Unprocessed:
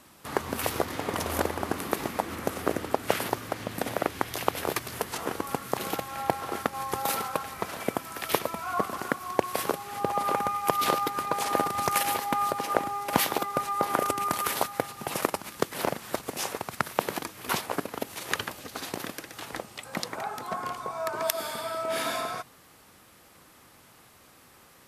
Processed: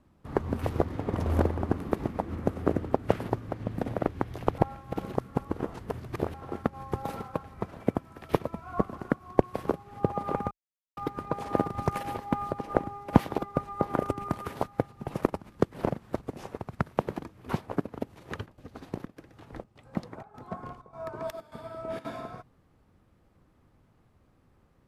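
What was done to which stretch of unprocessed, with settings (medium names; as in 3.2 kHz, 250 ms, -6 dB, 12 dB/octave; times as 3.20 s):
4.58–6.34 s: reverse
10.51–10.97 s: mute
17.99–22.05 s: square tremolo 1.7 Hz, depth 65%, duty 80%
whole clip: tilt EQ -4.5 dB/octave; upward expansion 1.5:1, over -39 dBFS; trim -1 dB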